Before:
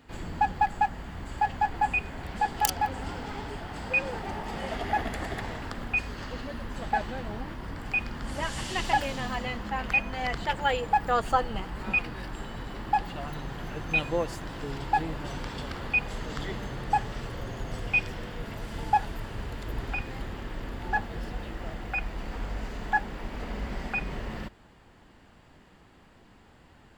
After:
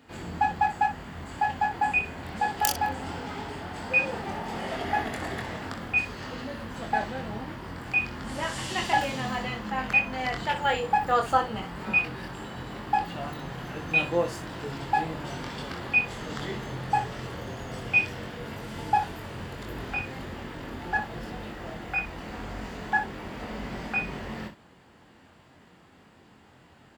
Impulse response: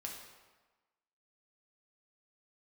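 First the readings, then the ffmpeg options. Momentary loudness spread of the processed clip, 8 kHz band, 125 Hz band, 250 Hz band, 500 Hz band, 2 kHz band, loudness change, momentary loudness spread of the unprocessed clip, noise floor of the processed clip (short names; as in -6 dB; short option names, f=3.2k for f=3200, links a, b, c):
14 LU, +1.5 dB, -0.5 dB, +1.5 dB, +1.5 dB, +2.5 dB, +1.5 dB, 12 LU, -56 dBFS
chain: -filter_complex "[0:a]highpass=90,asplit=2[a][b];[b]aecho=0:1:23|62:0.596|0.316[c];[a][c]amix=inputs=2:normalize=0"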